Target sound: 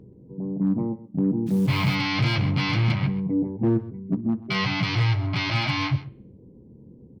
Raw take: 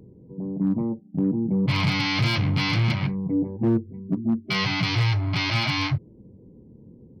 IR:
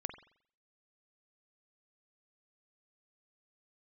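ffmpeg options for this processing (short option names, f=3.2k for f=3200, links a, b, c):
-filter_complex "[0:a]highshelf=f=5k:g=-8,asplit=3[a][b][c];[a]afade=t=out:st=1.46:d=0.02[d];[b]acrusher=bits=8:dc=4:mix=0:aa=0.000001,afade=t=in:st=1.46:d=0.02,afade=t=out:st=1.94:d=0.02[e];[c]afade=t=in:st=1.94:d=0.02[f];[d][e][f]amix=inputs=3:normalize=0,aecho=1:1:131:0.15,asplit=2[g][h];[1:a]atrim=start_sample=2205,adelay=15[i];[h][i]afir=irnorm=-1:irlink=0,volume=-12.5dB[j];[g][j]amix=inputs=2:normalize=0"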